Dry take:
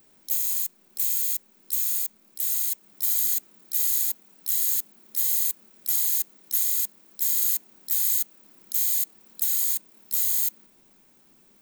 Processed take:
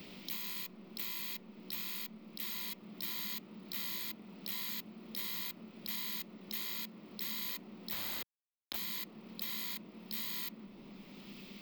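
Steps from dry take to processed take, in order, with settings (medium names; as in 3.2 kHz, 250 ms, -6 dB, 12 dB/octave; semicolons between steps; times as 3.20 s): graphic EQ with 31 bands 200 Hz +10 dB, 800 Hz -5 dB, 1.6 kHz -11 dB, 5 kHz +4 dB, 10 kHz -11 dB, 16 kHz +8 dB; 7.92–8.76 s: small samples zeroed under -32.5 dBFS; distance through air 400 m; three bands compressed up and down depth 70%; trim +8 dB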